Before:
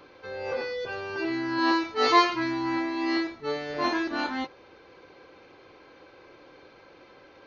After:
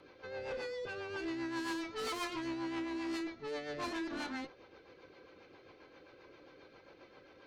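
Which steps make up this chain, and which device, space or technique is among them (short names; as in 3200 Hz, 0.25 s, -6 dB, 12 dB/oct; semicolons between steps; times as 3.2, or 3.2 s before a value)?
overdriven rotary cabinet (tube stage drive 31 dB, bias 0.3; rotary speaker horn 7.5 Hz); gain -3 dB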